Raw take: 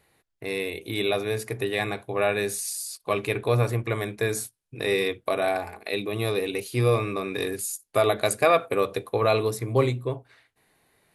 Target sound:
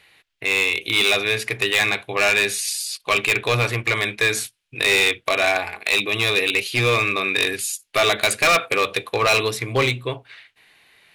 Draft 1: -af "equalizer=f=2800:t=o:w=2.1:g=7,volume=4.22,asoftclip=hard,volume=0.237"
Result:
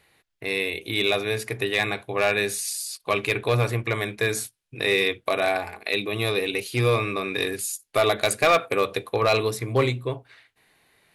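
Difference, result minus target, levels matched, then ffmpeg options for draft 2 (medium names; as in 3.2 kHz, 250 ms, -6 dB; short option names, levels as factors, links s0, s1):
2 kHz band -2.5 dB
-af "equalizer=f=2800:t=o:w=2.1:g=18.5,volume=4.22,asoftclip=hard,volume=0.237"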